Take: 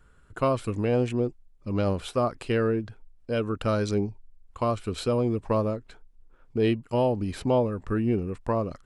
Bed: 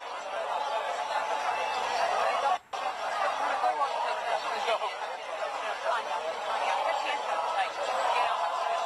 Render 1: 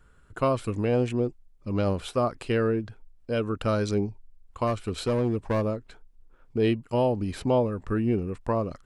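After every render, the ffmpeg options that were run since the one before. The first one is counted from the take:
ffmpeg -i in.wav -filter_complex "[0:a]asplit=3[link_01][link_02][link_03];[link_01]afade=type=out:start_time=4.66:duration=0.02[link_04];[link_02]aeval=exprs='clip(val(0),-1,0.0708)':channel_layout=same,afade=type=in:start_time=4.66:duration=0.02,afade=type=out:start_time=5.62:duration=0.02[link_05];[link_03]afade=type=in:start_time=5.62:duration=0.02[link_06];[link_04][link_05][link_06]amix=inputs=3:normalize=0" out.wav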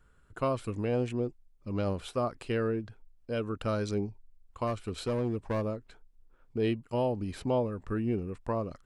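ffmpeg -i in.wav -af "volume=-5.5dB" out.wav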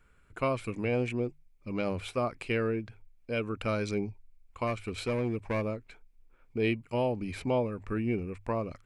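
ffmpeg -i in.wav -af "equalizer=frequency=2300:width=4.3:gain=13,bandreject=frequency=50:width_type=h:width=6,bandreject=frequency=100:width_type=h:width=6,bandreject=frequency=150:width_type=h:width=6" out.wav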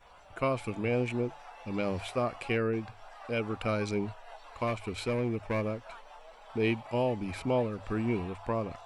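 ffmpeg -i in.wav -i bed.wav -filter_complex "[1:a]volume=-19.5dB[link_01];[0:a][link_01]amix=inputs=2:normalize=0" out.wav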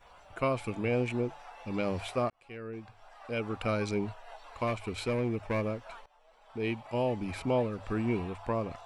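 ffmpeg -i in.wav -filter_complex "[0:a]asplit=3[link_01][link_02][link_03];[link_01]atrim=end=2.3,asetpts=PTS-STARTPTS,afade=type=out:start_time=2.296:duration=0.004:curve=hsin[link_04];[link_02]atrim=start=2.3:end=6.06,asetpts=PTS-STARTPTS,afade=type=in:duration=1.34,afade=type=out:start_time=3.756:duration=0.004:curve=hsin:silence=0.11885[link_05];[link_03]atrim=start=6.06,asetpts=PTS-STARTPTS,afade=type=in:duration=1.1:silence=0.11885[link_06];[link_04][link_05][link_06]concat=n=3:v=0:a=1" out.wav

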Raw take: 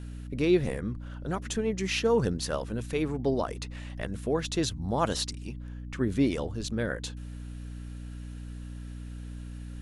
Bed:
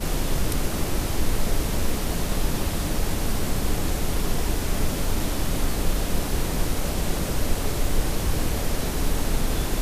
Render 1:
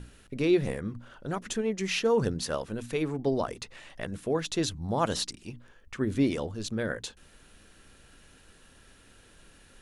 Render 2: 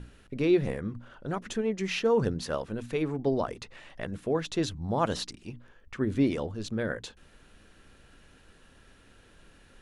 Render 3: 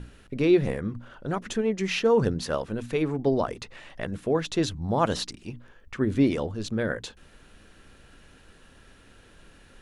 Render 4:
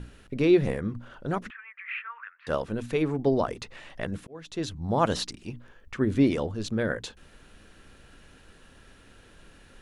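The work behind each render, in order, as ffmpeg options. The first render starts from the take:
ffmpeg -i in.wav -af "bandreject=frequency=60:width_type=h:width=6,bandreject=frequency=120:width_type=h:width=6,bandreject=frequency=180:width_type=h:width=6,bandreject=frequency=240:width_type=h:width=6,bandreject=frequency=300:width_type=h:width=6" out.wav
ffmpeg -i in.wav -af "aemphasis=mode=reproduction:type=cd" out.wav
ffmpeg -i in.wav -af "volume=3.5dB" out.wav
ffmpeg -i in.wav -filter_complex "[0:a]asettb=1/sr,asplit=3[link_01][link_02][link_03];[link_01]atrim=end=1.504[link_04];[link_02]atrim=start=1.5:end=2.47,asetpts=PTS-STARTPTS,afade=type=in:duration=0.004:curve=qsin,afade=type=out:start_time=0.966:duration=0.004:curve=qsin,asuperpass=centerf=1700:order=8:qfactor=1.3[link_05];[link_03]atrim=start=2.466[link_06];[link_04][link_05]acrossfade=duration=0.004:curve1=hsin:curve2=qsin[link_07];[link_07][link_06]acrossfade=duration=0.004:curve1=qsin:curve2=hsin,asplit=2[link_08][link_09];[link_08]atrim=end=4.27,asetpts=PTS-STARTPTS,afade=type=out:start_time=4.266:duration=0.004:curve=hsin[link_10];[link_09]atrim=start=4.27,asetpts=PTS-STARTPTS,afade=type=in:duration=0.7[link_11];[link_10][link_11]concat=n=2:v=0:a=1" out.wav

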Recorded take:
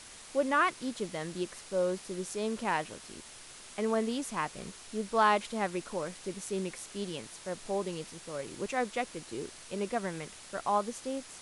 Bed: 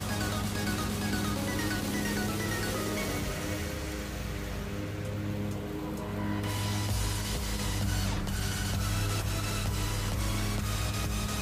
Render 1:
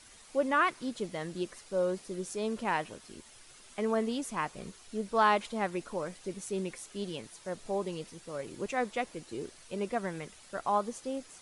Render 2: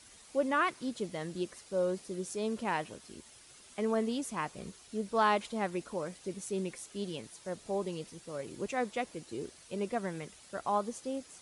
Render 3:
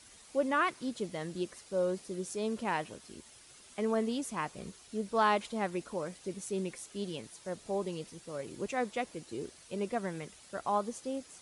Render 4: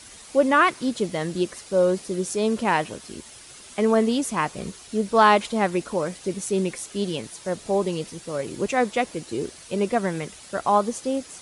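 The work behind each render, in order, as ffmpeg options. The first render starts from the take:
ffmpeg -i in.wav -af "afftdn=noise_reduction=8:noise_floor=-50" out.wav
ffmpeg -i in.wav -af "highpass=41,equalizer=frequency=1400:width_type=o:width=2.4:gain=-3" out.wav
ffmpeg -i in.wav -af anull out.wav
ffmpeg -i in.wav -af "volume=11.5dB" out.wav

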